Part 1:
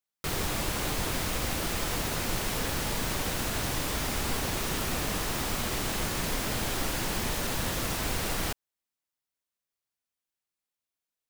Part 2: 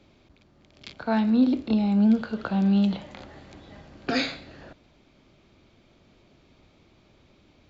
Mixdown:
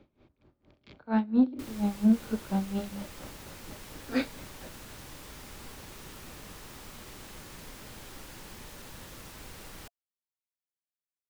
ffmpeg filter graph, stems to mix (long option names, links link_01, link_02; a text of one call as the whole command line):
ffmpeg -i stem1.wav -i stem2.wav -filter_complex "[0:a]adelay=1350,volume=-15.5dB[link_01];[1:a]lowpass=frequency=1200:poles=1,bandreject=frequency=50:width_type=h:width=6,bandreject=frequency=100:width_type=h:width=6,bandreject=frequency=150:width_type=h:width=6,bandreject=frequency=200:width_type=h:width=6,aeval=exprs='val(0)*pow(10,-21*(0.5-0.5*cos(2*PI*4.3*n/s))/20)':channel_layout=same,volume=1.5dB[link_02];[link_01][link_02]amix=inputs=2:normalize=0,bandreject=frequency=690:width=12,asoftclip=type=tanh:threshold=-12.5dB" out.wav